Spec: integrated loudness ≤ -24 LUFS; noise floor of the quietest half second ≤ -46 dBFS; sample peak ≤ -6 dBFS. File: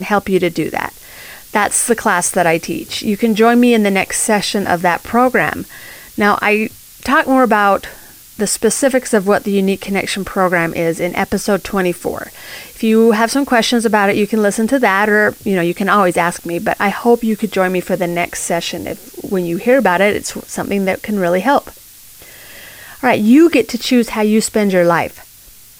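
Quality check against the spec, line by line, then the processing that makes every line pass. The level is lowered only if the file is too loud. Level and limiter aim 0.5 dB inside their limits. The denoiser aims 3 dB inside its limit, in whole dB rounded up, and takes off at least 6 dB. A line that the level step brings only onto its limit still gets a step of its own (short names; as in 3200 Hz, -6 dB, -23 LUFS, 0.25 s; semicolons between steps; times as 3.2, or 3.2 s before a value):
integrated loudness -14.5 LUFS: fail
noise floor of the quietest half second -41 dBFS: fail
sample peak -1.5 dBFS: fail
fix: gain -10 dB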